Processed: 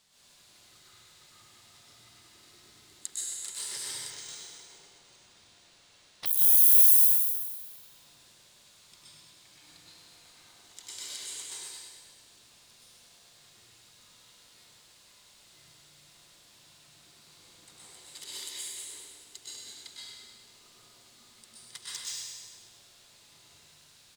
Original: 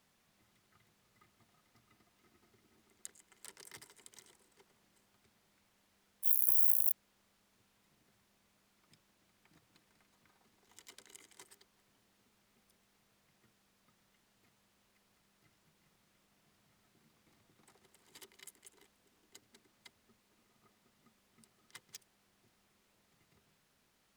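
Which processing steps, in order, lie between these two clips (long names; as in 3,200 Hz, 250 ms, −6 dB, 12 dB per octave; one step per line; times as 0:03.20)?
octave-band graphic EQ 250/4,000/8,000 Hz −5/+10/+9 dB
repeating echo 102 ms, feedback 59%, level −5.5 dB
dense smooth reverb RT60 1 s, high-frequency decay 0.95×, pre-delay 110 ms, DRR −7.5 dB
0:04.10–0:06.26: linearly interpolated sample-rate reduction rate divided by 3×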